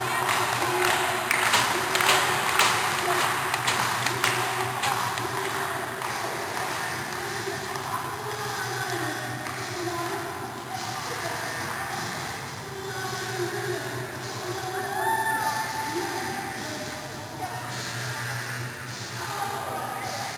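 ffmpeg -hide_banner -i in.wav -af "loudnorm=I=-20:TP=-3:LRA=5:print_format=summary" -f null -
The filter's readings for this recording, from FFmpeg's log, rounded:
Input Integrated:    -27.5 LUFS
Input True Peak:      -9.2 dBTP
Input LRA:             9.0 LU
Input Threshold:     -37.5 LUFS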